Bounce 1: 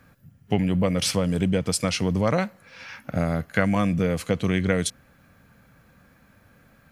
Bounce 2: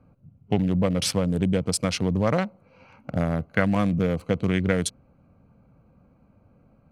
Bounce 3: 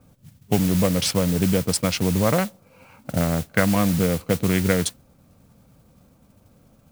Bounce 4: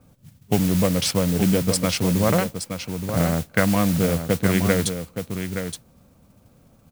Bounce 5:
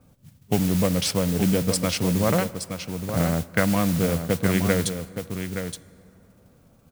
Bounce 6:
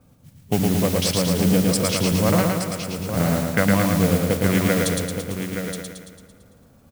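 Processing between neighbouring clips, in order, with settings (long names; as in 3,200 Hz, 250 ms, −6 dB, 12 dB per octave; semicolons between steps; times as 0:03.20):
adaptive Wiener filter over 25 samples
noise that follows the level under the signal 13 dB; level +2.5 dB
single-tap delay 871 ms −8 dB
dense smooth reverb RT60 3.2 s, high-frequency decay 0.45×, DRR 18 dB; level −2 dB
repeating echo 112 ms, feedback 58%, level −3 dB; level +1 dB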